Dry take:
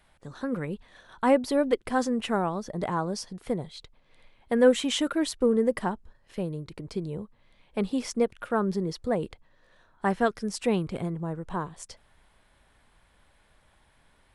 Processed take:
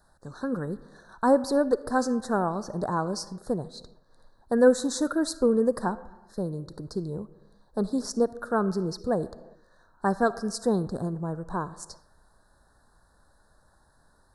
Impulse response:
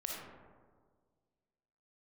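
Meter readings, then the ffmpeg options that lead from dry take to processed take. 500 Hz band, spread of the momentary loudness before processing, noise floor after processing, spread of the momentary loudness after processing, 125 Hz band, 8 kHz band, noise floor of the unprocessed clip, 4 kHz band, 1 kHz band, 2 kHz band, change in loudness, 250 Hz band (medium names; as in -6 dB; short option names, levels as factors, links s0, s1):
+1.0 dB, 16 LU, -63 dBFS, 15 LU, +0.5 dB, +1.5 dB, -64 dBFS, -4.5 dB, +1.0 dB, -1.0 dB, +0.5 dB, +0.5 dB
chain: -filter_complex "[0:a]asuperstop=centerf=2600:order=12:qfactor=1.2,asplit=2[s0][s1];[1:a]atrim=start_sample=2205,afade=t=out:st=0.45:d=0.01,atrim=end_sample=20286,lowshelf=f=440:g=-8.5[s2];[s1][s2]afir=irnorm=-1:irlink=0,volume=0.251[s3];[s0][s3]amix=inputs=2:normalize=0"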